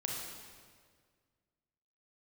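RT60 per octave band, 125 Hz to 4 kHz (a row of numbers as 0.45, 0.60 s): 2.3, 2.0, 2.0, 1.7, 1.6, 1.5 s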